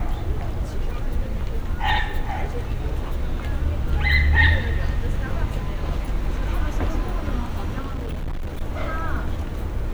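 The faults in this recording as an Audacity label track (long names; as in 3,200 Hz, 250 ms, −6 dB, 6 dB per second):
7.790000	8.620000	clipping −24 dBFS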